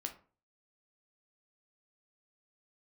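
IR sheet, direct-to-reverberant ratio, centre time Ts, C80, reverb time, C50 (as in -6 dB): 4.0 dB, 11 ms, 18.0 dB, 0.40 s, 12.0 dB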